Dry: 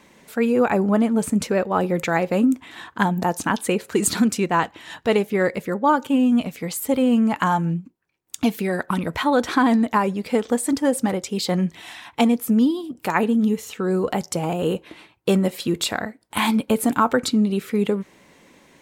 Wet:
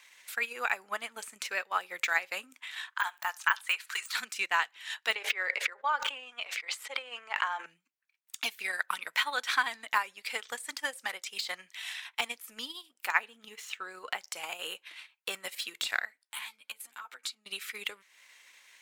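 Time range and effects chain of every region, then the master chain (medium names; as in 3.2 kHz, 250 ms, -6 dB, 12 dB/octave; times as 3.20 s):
2.91–4.16 s: de-esser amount 70% + resonant high-pass 1.1 kHz, resonance Q 1.5 + flutter echo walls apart 11.7 m, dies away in 0.21 s
5.15–7.66 s: high-pass 400 Hz 24 dB/octave + tape spacing loss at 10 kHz 22 dB + decay stretcher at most 27 dB/s
13.07–14.27 s: median filter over 3 samples + treble shelf 3.6 kHz -8 dB
16.23–17.46 s: compression 12:1, threshold -29 dBFS + three-phase chorus
whole clip: Chebyshev high-pass 2 kHz, order 2; de-esser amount 75%; transient shaper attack +4 dB, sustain -7 dB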